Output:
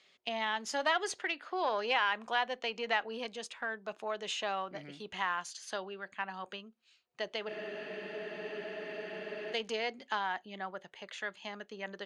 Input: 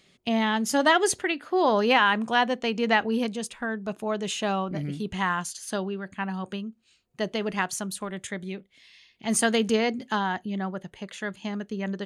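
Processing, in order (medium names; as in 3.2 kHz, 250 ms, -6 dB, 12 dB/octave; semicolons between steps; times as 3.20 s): single-diode clipper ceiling -13 dBFS; bass shelf 210 Hz -11 dB; compression 1.5:1, threshold -31 dBFS, peak gain reduction 5.5 dB; three-band isolator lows -12 dB, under 430 Hz, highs -23 dB, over 6.7 kHz; spectral freeze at 7.50 s, 2.03 s; trim -2.5 dB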